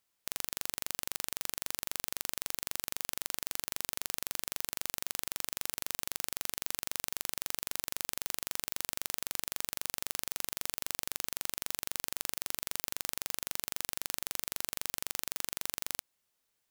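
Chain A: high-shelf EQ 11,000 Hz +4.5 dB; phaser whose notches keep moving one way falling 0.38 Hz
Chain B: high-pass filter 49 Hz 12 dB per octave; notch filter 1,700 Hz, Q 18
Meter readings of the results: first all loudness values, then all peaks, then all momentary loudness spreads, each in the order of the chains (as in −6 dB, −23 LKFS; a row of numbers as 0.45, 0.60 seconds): −33.5, −36.0 LKFS; −4.5, −6.5 dBFS; 0, 0 LU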